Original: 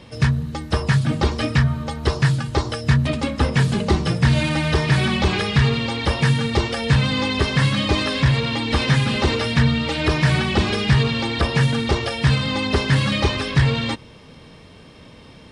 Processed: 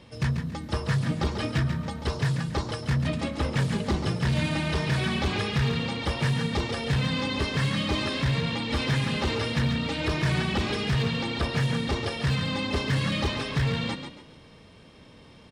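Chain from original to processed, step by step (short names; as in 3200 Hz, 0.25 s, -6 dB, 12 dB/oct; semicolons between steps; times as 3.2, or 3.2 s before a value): hard clip -12.5 dBFS, distortion -15 dB; frequency-shifting echo 0.139 s, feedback 31%, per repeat +31 Hz, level -8 dB; gain -7.5 dB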